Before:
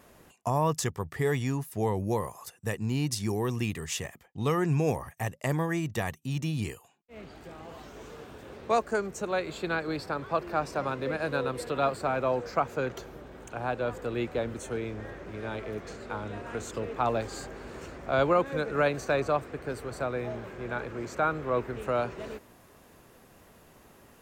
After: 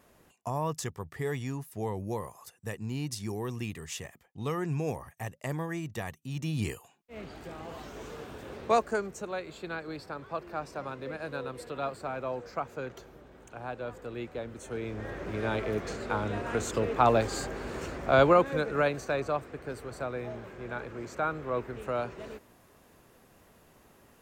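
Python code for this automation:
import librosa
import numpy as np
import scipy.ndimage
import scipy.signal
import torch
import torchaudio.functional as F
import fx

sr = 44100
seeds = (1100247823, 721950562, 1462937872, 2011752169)

y = fx.gain(x, sr, db=fx.line((6.29, -5.5), (6.71, 2.5), (8.61, 2.5), (9.42, -7.0), (14.52, -7.0), (15.24, 5.0), (18.07, 5.0), (19.11, -3.5)))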